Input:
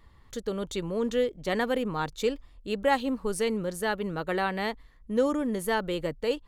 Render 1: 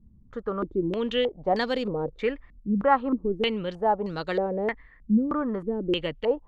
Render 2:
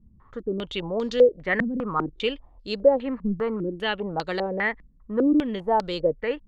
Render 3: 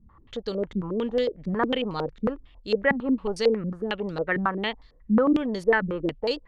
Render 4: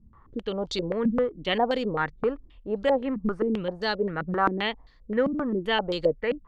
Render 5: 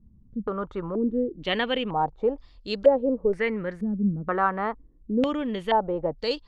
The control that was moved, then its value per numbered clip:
stepped low-pass, rate: 3.2, 5, 11, 7.6, 2.1 Hz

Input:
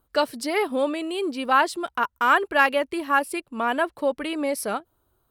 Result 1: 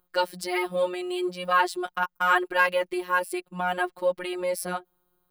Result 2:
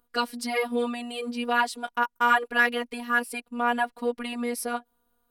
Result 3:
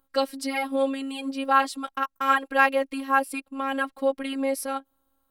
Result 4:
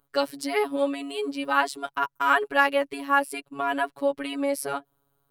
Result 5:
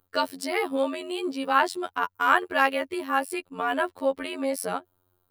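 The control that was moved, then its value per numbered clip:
robotiser, frequency: 180, 240, 270, 140, 90 Hz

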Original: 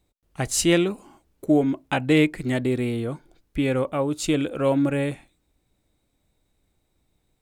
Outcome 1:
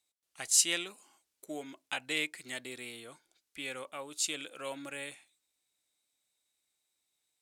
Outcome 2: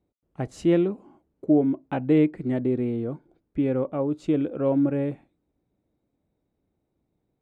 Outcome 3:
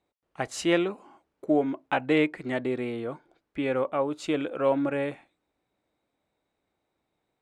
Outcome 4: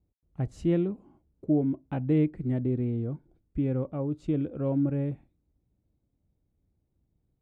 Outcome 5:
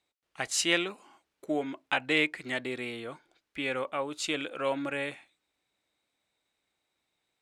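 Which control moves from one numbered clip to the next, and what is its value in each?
band-pass, frequency: 7600, 280, 940, 100, 2400 Hz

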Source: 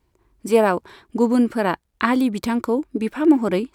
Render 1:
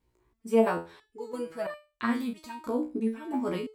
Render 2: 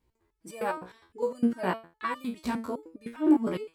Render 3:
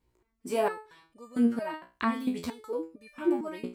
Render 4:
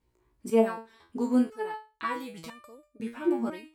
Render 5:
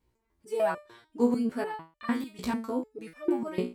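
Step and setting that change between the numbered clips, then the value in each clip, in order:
stepped resonator, rate: 3, 9.8, 4.4, 2, 6.7 Hz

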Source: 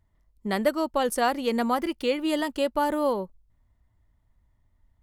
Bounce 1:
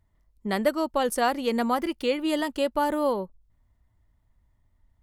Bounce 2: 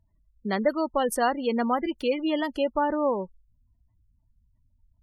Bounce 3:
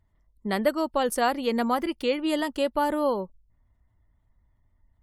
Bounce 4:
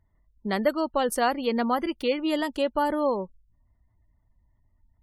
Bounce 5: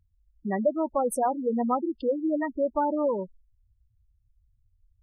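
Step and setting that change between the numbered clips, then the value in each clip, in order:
spectral gate, under each frame's peak: -60, -25, -45, -35, -10 dB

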